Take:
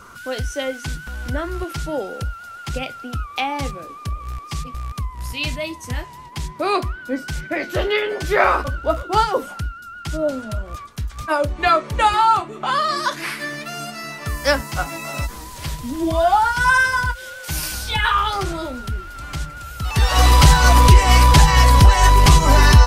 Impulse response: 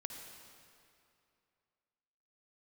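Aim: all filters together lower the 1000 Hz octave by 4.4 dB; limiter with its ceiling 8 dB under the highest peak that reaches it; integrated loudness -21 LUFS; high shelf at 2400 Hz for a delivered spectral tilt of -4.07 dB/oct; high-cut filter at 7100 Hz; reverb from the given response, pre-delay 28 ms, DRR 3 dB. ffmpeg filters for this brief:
-filter_complex "[0:a]lowpass=7.1k,equalizer=f=1k:t=o:g=-6,highshelf=f=2.4k:g=3.5,alimiter=limit=-9dB:level=0:latency=1,asplit=2[a][b];[1:a]atrim=start_sample=2205,adelay=28[c];[b][c]afir=irnorm=-1:irlink=0,volume=-1dB[d];[a][d]amix=inputs=2:normalize=0,volume=0.5dB"

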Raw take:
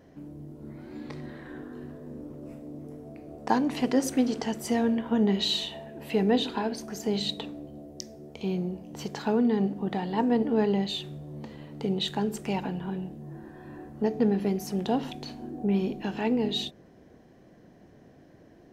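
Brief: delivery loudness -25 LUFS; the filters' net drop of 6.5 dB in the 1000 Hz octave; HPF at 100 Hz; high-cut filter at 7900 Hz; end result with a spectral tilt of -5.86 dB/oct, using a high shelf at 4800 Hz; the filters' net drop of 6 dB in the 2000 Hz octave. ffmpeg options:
-af "highpass=100,lowpass=7.9k,equalizer=f=1k:t=o:g=-8,equalizer=f=2k:t=o:g=-4,highshelf=f=4.8k:g=-6.5,volume=4.5dB"

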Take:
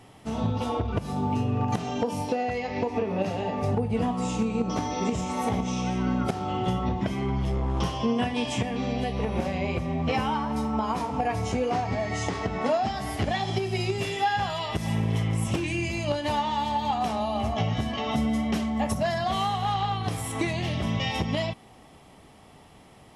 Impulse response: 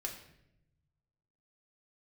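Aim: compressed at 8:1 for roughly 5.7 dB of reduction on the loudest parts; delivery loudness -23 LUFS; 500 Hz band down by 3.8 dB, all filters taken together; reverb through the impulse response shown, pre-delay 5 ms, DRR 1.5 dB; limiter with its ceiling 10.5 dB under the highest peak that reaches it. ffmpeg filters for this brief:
-filter_complex "[0:a]equalizer=f=500:t=o:g=-5,acompressor=threshold=-28dB:ratio=8,alimiter=level_in=6dB:limit=-24dB:level=0:latency=1,volume=-6dB,asplit=2[a][b];[1:a]atrim=start_sample=2205,adelay=5[c];[b][c]afir=irnorm=-1:irlink=0,volume=-1dB[d];[a][d]amix=inputs=2:normalize=0,volume=13dB"

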